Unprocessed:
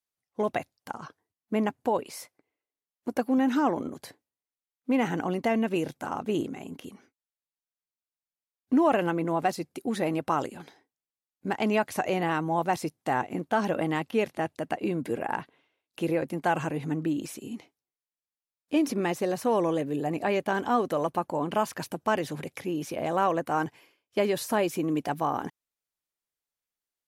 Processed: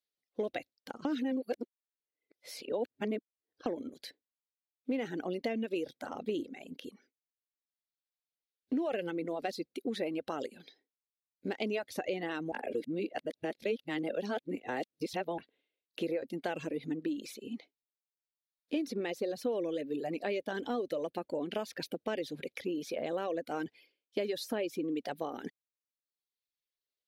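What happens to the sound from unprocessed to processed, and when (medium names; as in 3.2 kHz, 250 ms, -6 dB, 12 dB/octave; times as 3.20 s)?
1.05–3.66 s: reverse
12.52–15.38 s: reverse
whole clip: reverb removal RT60 1.1 s; graphic EQ 125/250/500/1000/2000/4000/8000 Hz -7/+5/+10/-10/+4/+11/-5 dB; compression 3:1, threshold -26 dBFS; trim -6.5 dB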